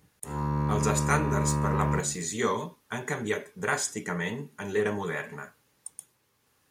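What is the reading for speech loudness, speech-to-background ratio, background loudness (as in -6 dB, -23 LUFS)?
-30.5 LUFS, -1.5 dB, -29.0 LUFS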